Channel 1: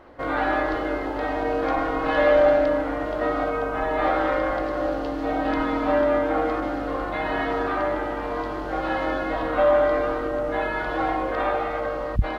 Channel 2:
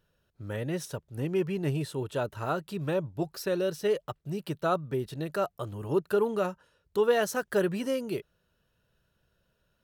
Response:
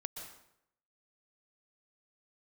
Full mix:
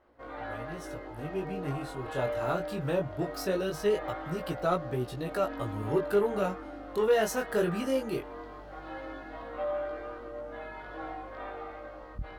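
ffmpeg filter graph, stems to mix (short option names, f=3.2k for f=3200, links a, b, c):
-filter_complex "[0:a]volume=-16dB,asplit=2[a][b];[b]volume=-6dB[c];[1:a]dynaudnorm=f=190:g=9:m=6dB,volume=-3dB,afade=t=in:st=2:d=0.3:silence=0.446684[d];[2:a]atrim=start_sample=2205[e];[c][e]afir=irnorm=-1:irlink=0[f];[a][d][f]amix=inputs=3:normalize=0,asoftclip=type=tanh:threshold=-14.5dB,flanger=delay=16.5:depth=6.9:speed=0.2"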